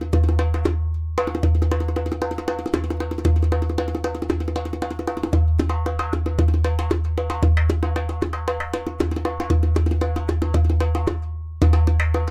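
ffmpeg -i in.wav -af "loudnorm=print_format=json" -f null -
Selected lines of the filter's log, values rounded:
"input_i" : "-21.7",
"input_tp" : "-6.0",
"input_lra" : "2.1",
"input_thresh" : "-31.7",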